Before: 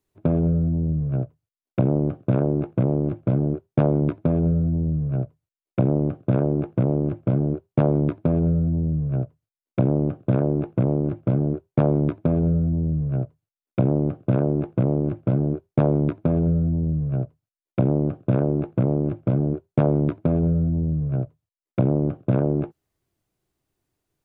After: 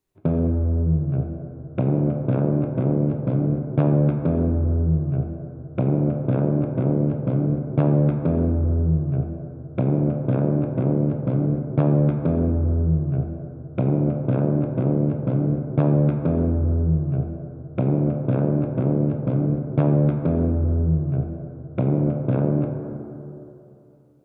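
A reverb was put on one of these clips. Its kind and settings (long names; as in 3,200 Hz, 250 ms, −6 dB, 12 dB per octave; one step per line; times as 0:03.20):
dense smooth reverb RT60 2.9 s, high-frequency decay 0.3×, DRR 2.5 dB
level −2 dB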